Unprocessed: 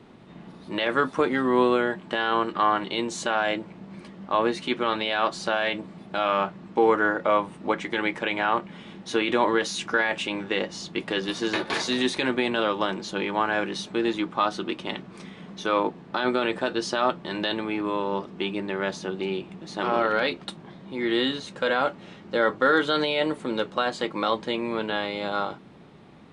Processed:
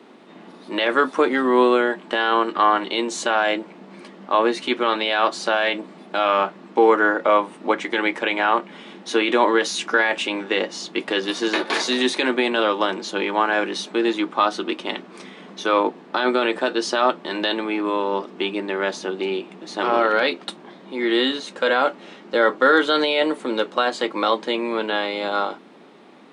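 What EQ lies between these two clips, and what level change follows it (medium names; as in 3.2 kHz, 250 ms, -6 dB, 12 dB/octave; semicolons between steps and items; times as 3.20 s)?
high-pass 240 Hz 24 dB/octave; +5.0 dB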